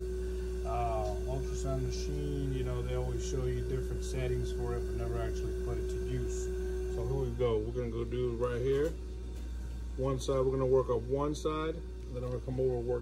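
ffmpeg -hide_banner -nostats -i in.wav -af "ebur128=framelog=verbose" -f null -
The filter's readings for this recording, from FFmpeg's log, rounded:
Integrated loudness:
  I:         -34.8 LUFS
  Threshold: -44.8 LUFS
Loudness range:
  LRA:         2.7 LU
  Threshold: -54.7 LUFS
  LRA low:   -35.8 LUFS
  LRA high:  -33.1 LUFS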